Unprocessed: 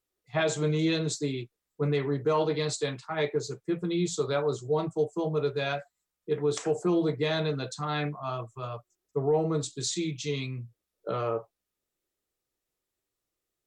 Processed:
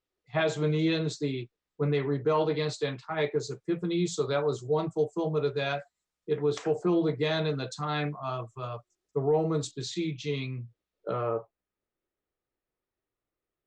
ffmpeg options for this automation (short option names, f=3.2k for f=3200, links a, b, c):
-af "asetnsamples=n=441:p=0,asendcmd='3.32 lowpass f 7500;6.5 lowpass f 4400;7.16 lowpass f 7600;9.71 lowpass f 3900;11.13 lowpass f 2100',lowpass=4.5k"